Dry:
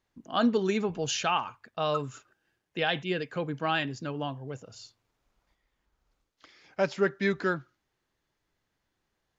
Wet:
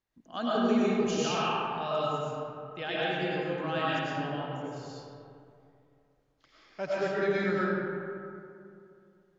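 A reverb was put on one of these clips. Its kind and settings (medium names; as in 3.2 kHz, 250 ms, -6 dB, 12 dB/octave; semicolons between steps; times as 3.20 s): algorithmic reverb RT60 2.6 s, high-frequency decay 0.45×, pre-delay 65 ms, DRR -8.5 dB; trim -9.5 dB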